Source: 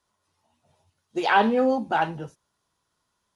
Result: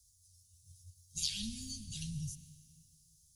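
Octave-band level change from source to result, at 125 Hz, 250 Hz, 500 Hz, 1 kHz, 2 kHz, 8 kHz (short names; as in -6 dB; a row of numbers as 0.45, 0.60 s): -3.0 dB, -19.0 dB, under -40 dB, under -40 dB, -29.5 dB, n/a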